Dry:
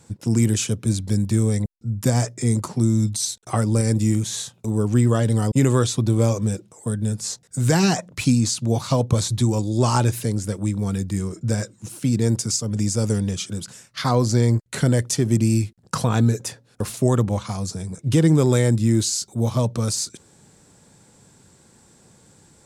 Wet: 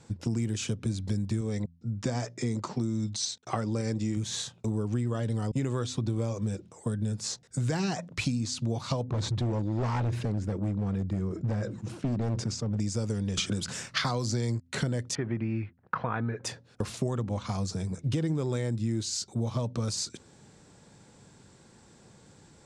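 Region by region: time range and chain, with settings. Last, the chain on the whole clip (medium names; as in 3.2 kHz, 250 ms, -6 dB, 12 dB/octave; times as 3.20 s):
1.41–4.17 s: low-pass 7.5 kHz 24 dB/octave + bass shelf 110 Hz -10.5 dB
9.04–12.80 s: low-pass 1.2 kHz 6 dB/octave + hard clipper -19.5 dBFS + decay stretcher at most 98 dB/s
13.37–14.60 s: treble shelf 2.9 kHz +9 dB + three bands compressed up and down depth 70%
15.15–16.44 s: low-pass 1.9 kHz 24 dB/octave + tilt shelf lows -8.5 dB, about 750 Hz
whole clip: low-pass 6 kHz 12 dB/octave; de-hum 84.75 Hz, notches 3; compression, threshold -25 dBFS; trim -1.5 dB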